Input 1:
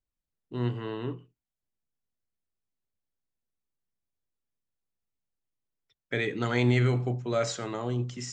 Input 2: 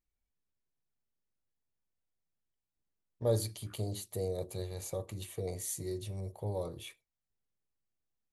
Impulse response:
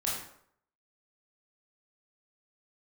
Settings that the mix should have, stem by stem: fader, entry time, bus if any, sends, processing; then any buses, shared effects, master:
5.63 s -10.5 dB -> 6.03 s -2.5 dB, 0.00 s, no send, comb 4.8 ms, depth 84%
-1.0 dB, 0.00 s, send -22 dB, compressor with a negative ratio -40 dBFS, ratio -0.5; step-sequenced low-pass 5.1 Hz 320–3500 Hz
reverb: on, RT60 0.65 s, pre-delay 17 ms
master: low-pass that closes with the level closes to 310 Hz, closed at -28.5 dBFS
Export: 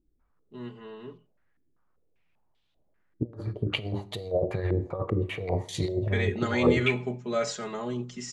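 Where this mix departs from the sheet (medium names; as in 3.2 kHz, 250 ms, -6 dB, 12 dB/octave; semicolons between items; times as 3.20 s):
stem 2 -1.0 dB -> +10.5 dB; master: missing low-pass that closes with the level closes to 310 Hz, closed at -28.5 dBFS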